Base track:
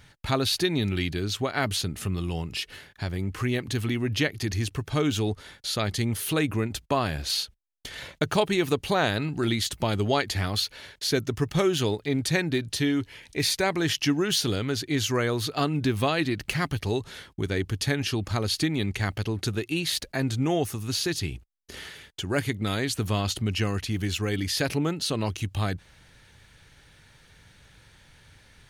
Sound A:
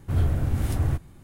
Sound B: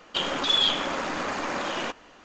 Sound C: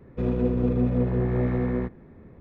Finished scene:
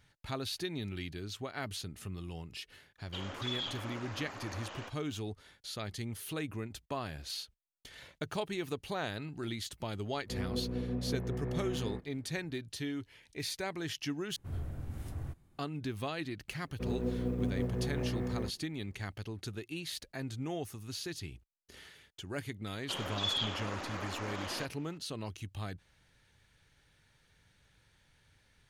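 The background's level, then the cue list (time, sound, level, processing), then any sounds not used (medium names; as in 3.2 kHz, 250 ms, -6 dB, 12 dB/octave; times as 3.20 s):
base track -13 dB
2.98 s: add B -16 dB
10.12 s: add C -13 dB
14.36 s: replace with A -16.5 dB
16.62 s: add C -10 dB + companding laws mixed up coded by A
22.74 s: add B -11.5 dB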